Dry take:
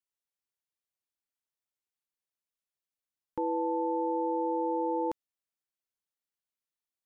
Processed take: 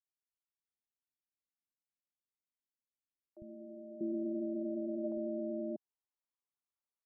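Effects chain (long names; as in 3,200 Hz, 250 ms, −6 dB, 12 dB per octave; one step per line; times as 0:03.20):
pitch shifter −6.5 semitones
three-band delay without the direct sound highs, lows, mids 50/640 ms, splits 150/580 Hz
low-pass filter sweep 250 Hz → 1,100 Hz, 0:02.75–0:06.51
level −7.5 dB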